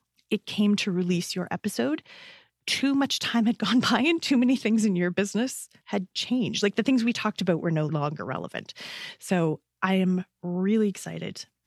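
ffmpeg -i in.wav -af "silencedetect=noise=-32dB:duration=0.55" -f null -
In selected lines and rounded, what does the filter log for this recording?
silence_start: 1.99
silence_end: 2.68 | silence_duration: 0.69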